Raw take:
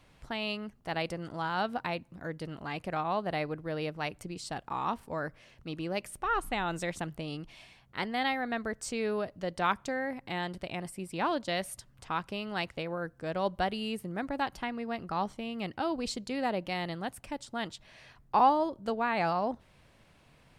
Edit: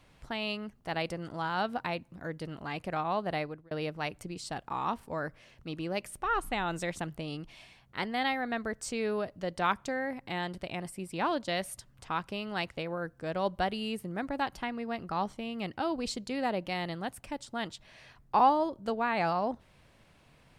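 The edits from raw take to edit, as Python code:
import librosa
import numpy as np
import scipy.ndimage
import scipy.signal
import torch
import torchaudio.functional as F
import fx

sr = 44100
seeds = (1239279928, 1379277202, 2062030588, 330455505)

y = fx.edit(x, sr, fx.fade_out_span(start_s=3.37, length_s=0.34), tone=tone)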